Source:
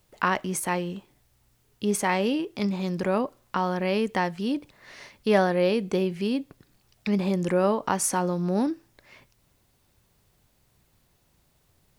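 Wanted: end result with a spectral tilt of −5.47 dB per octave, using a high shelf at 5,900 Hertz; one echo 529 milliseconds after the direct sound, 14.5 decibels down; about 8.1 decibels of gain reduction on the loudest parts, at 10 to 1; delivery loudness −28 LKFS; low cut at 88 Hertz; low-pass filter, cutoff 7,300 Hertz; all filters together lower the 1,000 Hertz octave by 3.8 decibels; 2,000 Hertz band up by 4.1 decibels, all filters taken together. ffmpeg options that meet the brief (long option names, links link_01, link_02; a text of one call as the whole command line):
ffmpeg -i in.wav -af "highpass=88,lowpass=7300,equalizer=frequency=1000:width_type=o:gain=-6.5,equalizer=frequency=2000:width_type=o:gain=8,highshelf=frequency=5900:gain=-7.5,acompressor=threshold=-25dB:ratio=10,aecho=1:1:529:0.188,volume=3dB" out.wav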